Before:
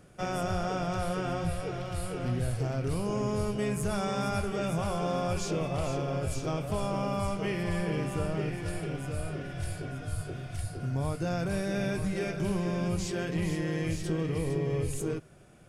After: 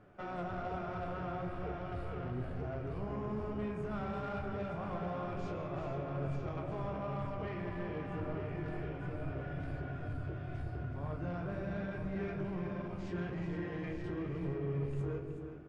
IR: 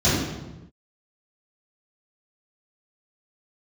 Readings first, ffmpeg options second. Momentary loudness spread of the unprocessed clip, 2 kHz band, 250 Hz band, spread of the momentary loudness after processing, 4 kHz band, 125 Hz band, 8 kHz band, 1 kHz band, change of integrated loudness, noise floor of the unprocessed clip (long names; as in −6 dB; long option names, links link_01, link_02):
6 LU, −8.0 dB, −7.5 dB, 3 LU, −16.5 dB, −7.5 dB, below −30 dB, −6.5 dB, −7.5 dB, −41 dBFS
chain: -filter_complex "[0:a]lowpass=1600,lowshelf=frequency=440:gain=-7,bandreject=frequency=510:width=12,bandreject=frequency=78.9:width_type=h:width=4,bandreject=frequency=157.8:width_type=h:width=4,bandreject=frequency=236.7:width_type=h:width=4,bandreject=frequency=315.6:width_type=h:width=4,bandreject=frequency=394.5:width_type=h:width=4,bandreject=frequency=473.4:width_type=h:width=4,bandreject=frequency=552.3:width_type=h:width=4,bandreject=frequency=631.2:width_type=h:width=4,bandreject=frequency=710.1:width_type=h:width=4,bandreject=frequency=789:width_type=h:width=4,bandreject=frequency=867.9:width_type=h:width=4,bandreject=frequency=946.8:width_type=h:width=4,bandreject=frequency=1025.7:width_type=h:width=4,bandreject=frequency=1104.6:width_type=h:width=4,bandreject=frequency=1183.5:width_type=h:width=4,bandreject=frequency=1262.4:width_type=h:width=4,bandreject=frequency=1341.3:width_type=h:width=4,bandreject=frequency=1420.2:width_type=h:width=4,bandreject=frequency=1499.1:width_type=h:width=4,bandreject=frequency=1578:width_type=h:width=4,bandreject=frequency=1656.9:width_type=h:width=4,bandreject=frequency=1735.8:width_type=h:width=4,bandreject=frequency=1814.7:width_type=h:width=4,bandreject=frequency=1893.6:width_type=h:width=4,bandreject=frequency=1972.5:width_type=h:width=4,bandreject=frequency=2051.4:width_type=h:width=4,bandreject=frequency=2130.3:width_type=h:width=4,bandreject=frequency=2209.2:width_type=h:width=4,bandreject=frequency=2288.1:width_type=h:width=4,bandreject=frequency=2367:width_type=h:width=4,bandreject=frequency=2445.9:width_type=h:width=4,bandreject=frequency=2524.8:width_type=h:width=4,bandreject=frequency=2603.7:width_type=h:width=4,bandreject=frequency=2682.6:width_type=h:width=4,acompressor=threshold=-39dB:ratio=2,flanger=delay=8.8:depth=9.3:regen=47:speed=1.1:shape=triangular,asoftclip=type=tanh:threshold=-39.5dB,flanger=delay=2.9:depth=8.8:regen=-81:speed=0.13:shape=triangular,asplit=2[link_01][link_02];[link_02]adelay=28,volume=-13dB[link_03];[link_01][link_03]amix=inputs=2:normalize=0,aecho=1:1:372:0.355,asplit=2[link_04][link_05];[1:a]atrim=start_sample=2205,adelay=133[link_06];[link_05][link_06]afir=irnorm=-1:irlink=0,volume=-31dB[link_07];[link_04][link_07]amix=inputs=2:normalize=0,volume=9.5dB"